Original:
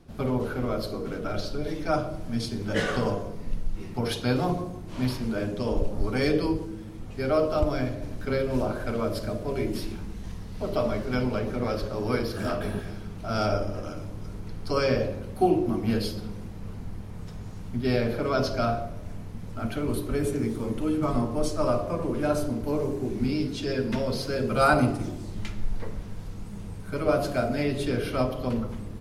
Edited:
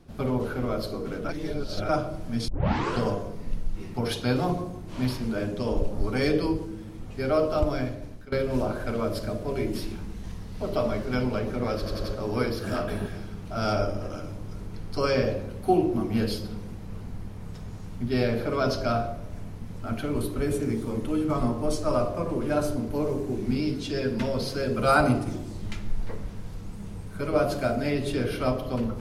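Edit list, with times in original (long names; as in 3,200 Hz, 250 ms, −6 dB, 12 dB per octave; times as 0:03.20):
0:01.29–0:01.89: reverse
0:02.48: tape start 0.52 s
0:07.59–0:08.32: fade out equal-power, to −18.5 dB
0:11.77: stutter 0.09 s, 4 plays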